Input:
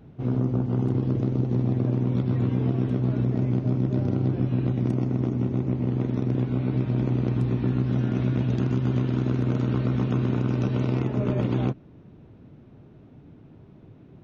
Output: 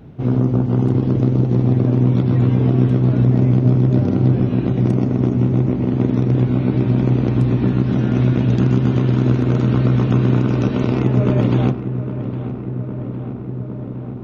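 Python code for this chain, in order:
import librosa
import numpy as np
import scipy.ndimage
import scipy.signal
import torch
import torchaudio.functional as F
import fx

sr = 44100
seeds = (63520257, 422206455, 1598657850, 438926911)

y = fx.echo_filtered(x, sr, ms=810, feedback_pct=81, hz=2200.0, wet_db=-12)
y = y * librosa.db_to_amplitude(8.0)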